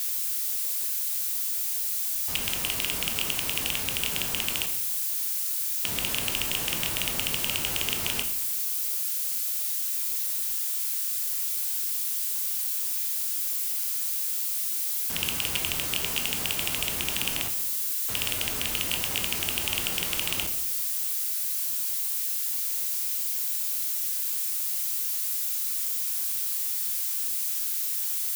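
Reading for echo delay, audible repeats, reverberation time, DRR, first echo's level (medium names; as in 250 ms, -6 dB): no echo, no echo, 0.80 s, 5.0 dB, no echo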